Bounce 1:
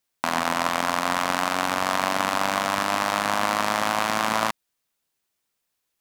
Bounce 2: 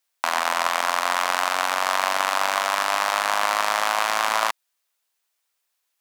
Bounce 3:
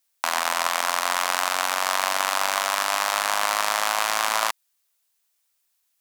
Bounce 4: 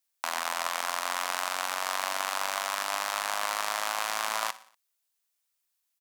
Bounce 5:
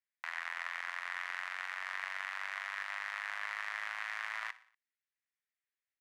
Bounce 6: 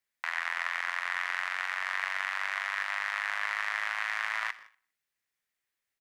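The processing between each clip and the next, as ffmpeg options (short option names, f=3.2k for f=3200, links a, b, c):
-af "highpass=630,volume=2.5dB"
-af "highshelf=f=4.4k:g=8,volume=-2.5dB"
-af "aecho=1:1:60|120|180|240:0.126|0.0667|0.0354|0.0187,volume=-7.5dB"
-af "bandpass=f=1.9k:t=q:w=4.1:csg=0"
-filter_complex "[0:a]asplit=2[a][b];[b]adelay=160,highpass=300,lowpass=3.4k,asoftclip=type=hard:threshold=-32dB,volume=-20dB[c];[a][c]amix=inputs=2:normalize=0,volume=7.5dB"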